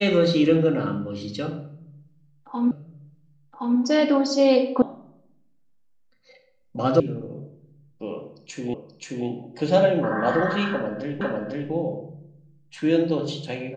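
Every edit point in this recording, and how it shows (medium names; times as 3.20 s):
2.71 s: repeat of the last 1.07 s
4.82 s: sound stops dead
7.00 s: sound stops dead
8.74 s: repeat of the last 0.53 s
11.21 s: repeat of the last 0.5 s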